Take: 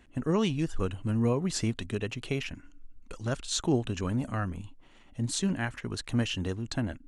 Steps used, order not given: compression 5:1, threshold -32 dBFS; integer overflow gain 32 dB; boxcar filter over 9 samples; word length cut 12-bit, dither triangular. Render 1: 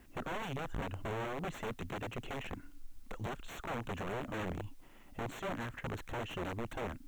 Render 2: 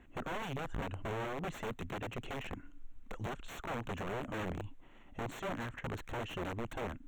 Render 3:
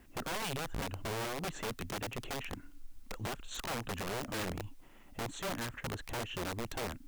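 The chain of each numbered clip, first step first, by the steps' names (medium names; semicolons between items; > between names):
compression > integer overflow > boxcar filter > word length cut; compression > word length cut > integer overflow > boxcar filter; boxcar filter > compression > integer overflow > word length cut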